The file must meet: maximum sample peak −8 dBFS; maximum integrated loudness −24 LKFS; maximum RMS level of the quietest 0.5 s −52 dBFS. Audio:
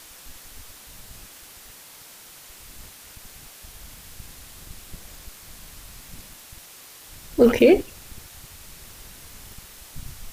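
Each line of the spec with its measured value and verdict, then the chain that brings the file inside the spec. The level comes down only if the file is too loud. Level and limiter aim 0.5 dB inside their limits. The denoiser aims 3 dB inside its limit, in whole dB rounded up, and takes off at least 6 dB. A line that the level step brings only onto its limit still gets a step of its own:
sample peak −5.5 dBFS: out of spec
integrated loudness −18.0 LKFS: out of spec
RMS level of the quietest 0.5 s −46 dBFS: out of spec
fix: level −6.5 dB

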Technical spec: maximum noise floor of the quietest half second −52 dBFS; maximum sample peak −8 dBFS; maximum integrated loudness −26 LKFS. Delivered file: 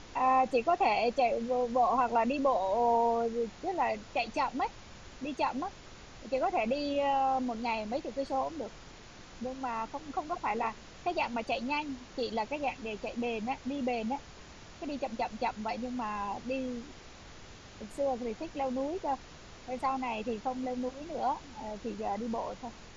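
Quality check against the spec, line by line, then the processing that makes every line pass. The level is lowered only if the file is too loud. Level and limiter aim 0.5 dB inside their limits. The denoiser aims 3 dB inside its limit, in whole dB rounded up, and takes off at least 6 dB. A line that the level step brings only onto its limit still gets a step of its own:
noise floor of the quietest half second −50 dBFS: out of spec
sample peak −17.0 dBFS: in spec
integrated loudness −33.0 LKFS: in spec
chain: broadband denoise 6 dB, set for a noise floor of −50 dBFS

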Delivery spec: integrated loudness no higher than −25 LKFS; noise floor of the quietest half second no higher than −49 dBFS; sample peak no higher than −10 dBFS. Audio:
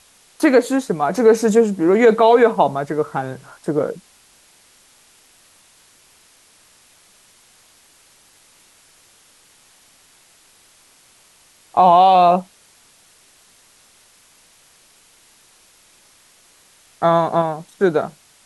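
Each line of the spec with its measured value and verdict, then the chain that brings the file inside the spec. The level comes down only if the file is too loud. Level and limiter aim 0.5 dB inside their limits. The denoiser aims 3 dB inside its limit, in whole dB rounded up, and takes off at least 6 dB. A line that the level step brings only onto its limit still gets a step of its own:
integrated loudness −16.0 LKFS: out of spec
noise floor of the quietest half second −53 dBFS: in spec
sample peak −3.0 dBFS: out of spec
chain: level −9.5 dB

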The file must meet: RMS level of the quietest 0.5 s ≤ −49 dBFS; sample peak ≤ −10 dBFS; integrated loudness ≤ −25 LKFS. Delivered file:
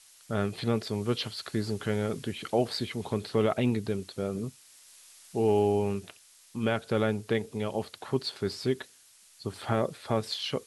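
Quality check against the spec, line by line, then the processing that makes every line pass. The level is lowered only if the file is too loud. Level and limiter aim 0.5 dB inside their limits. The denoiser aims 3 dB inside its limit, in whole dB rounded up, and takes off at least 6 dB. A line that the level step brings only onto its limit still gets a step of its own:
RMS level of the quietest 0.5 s −58 dBFS: in spec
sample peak −11.0 dBFS: in spec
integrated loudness −30.5 LKFS: in spec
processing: no processing needed

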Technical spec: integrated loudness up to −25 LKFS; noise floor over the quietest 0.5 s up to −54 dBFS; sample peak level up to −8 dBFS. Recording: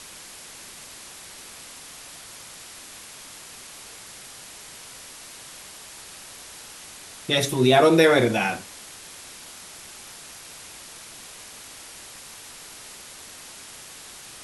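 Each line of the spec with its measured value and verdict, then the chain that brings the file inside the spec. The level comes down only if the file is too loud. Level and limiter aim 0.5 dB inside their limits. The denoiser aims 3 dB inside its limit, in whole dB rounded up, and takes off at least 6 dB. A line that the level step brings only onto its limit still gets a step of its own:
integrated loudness −19.5 LKFS: out of spec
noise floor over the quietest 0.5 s −43 dBFS: out of spec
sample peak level −5.5 dBFS: out of spec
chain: broadband denoise 8 dB, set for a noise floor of −43 dBFS
level −6 dB

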